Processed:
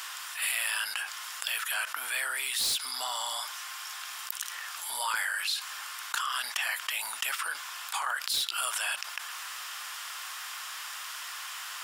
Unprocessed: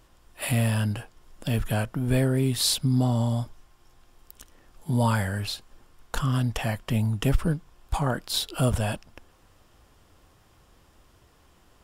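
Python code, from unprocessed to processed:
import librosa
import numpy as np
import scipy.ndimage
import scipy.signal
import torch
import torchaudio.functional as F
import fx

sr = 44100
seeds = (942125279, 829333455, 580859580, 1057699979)

y = scipy.signal.sosfilt(scipy.signal.butter(4, 1200.0, 'highpass', fs=sr, output='sos'), x)
y = np.clip(10.0 ** (23.5 / 20.0) * y, -1.0, 1.0) / 10.0 ** (23.5 / 20.0)
y = fx.env_flatten(y, sr, amount_pct=70)
y = y * librosa.db_to_amplitude(-2.0)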